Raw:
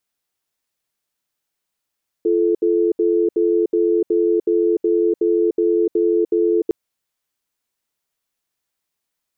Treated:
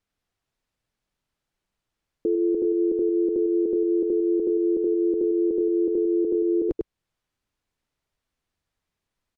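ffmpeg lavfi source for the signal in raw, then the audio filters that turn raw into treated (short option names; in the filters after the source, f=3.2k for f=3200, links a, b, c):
-f lavfi -i "aevalsrc='0.15*(sin(2*PI*343*t)+sin(2*PI*435*t))*clip(min(mod(t,0.37),0.3-mod(t,0.37))/0.005,0,1)':d=4.46:s=44100"
-filter_complex "[0:a]aemphasis=mode=reproduction:type=bsi,asplit=2[a][b];[b]aecho=0:1:100:0.501[c];[a][c]amix=inputs=2:normalize=0,alimiter=limit=-16dB:level=0:latency=1:release=380"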